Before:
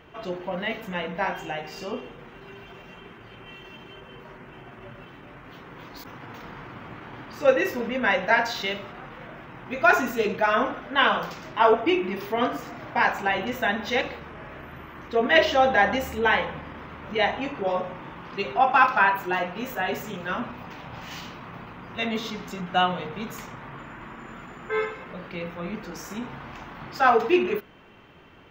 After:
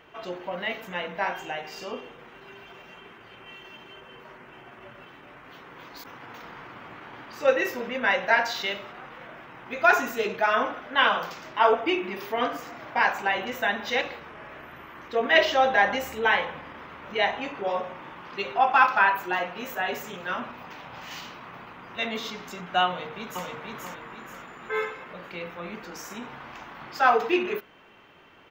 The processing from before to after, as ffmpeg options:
-filter_complex "[0:a]asplit=2[s0][s1];[s1]afade=t=in:st=22.87:d=0.01,afade=t=out:st=23.46:d=0.01,aecho=0:1:480|960|1440|1920|2400:0.749894|0.299958|0.119983|0.0479932|0.0191973[s2];[s0][s2]amix=inputs=2:normalize=0,lowshelf=f=260:g=-11.5"

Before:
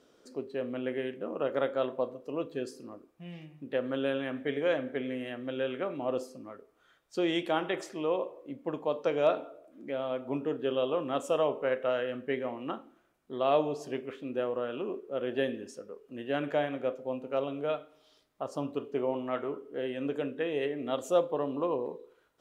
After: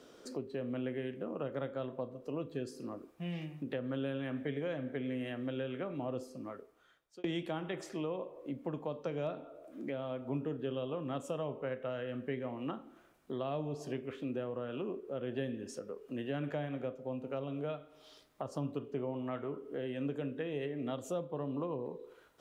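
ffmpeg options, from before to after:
-filter_complex "[0:a]asplit=2[s0][s1];[s0]atrim=end=7.24,asetpts=PTS-STARTPTS,afade=t=out:st=6.27:d=0.97[s2];[s1]atrim=start=7.24,asetpts=PTS-STARTPTS,afade=t=in:d=0.004:c=hsin[s3];[s2][s3]concat=n=2:v=0:a=1,acrossover=split=180[s4][s5];[s5]acompressor=threshold=0.00501:ratio=4[s6];[s4][s6]amix=inputs=2:normalize=0,volume=2"

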